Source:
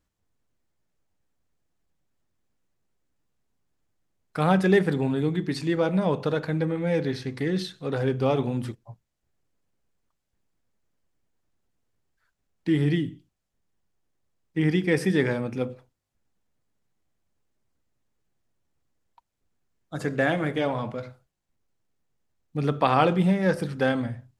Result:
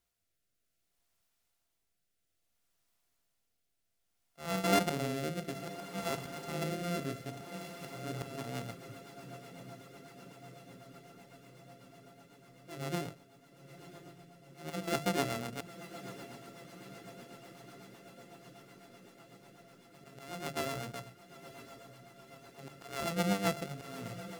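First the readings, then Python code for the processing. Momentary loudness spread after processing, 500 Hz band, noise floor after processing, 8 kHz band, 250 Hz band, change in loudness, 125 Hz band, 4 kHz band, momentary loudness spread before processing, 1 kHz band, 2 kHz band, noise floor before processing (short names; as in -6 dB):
23 LU, -13.0 dB, -81 dBFS, +3.5 dB, -13.5 dB, -12.5 dB, -14.0 dB, -4.5 dB, 13 LU, -9.5 dB, -10.5 dB, -80 dBFS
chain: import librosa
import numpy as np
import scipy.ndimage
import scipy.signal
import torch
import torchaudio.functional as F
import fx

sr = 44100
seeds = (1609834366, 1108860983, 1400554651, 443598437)

y = np.r_[np.sort(x[:len(x) // 64 * 64].reshape(-1, 64), axis=1).ravel(), x[len(x) // 64 * 64:]]
y = fx.wow_flutter(y, sr, seeds[0], rate_hz=2.1, depth_cents=28.0)
y = fx.auto_swell(y, sr, attack_ms=390.0)
y = fx.hum_notches(y, sr, base_hz=50, count=3)
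y = fx.quant_dither(y, sr, seeds[1], bits=12, dither='triangular')
y = fx.echo_diffused(y, sr, ms=978, feedback_pct=73, wet_db=-13.0)
y = fx.rotary_switch(y, sr, hz=0.6, then_hz=8.0, switch_at_s=7.74)
y = F.gain(torch.from_numpy(y), -8.0).numpy()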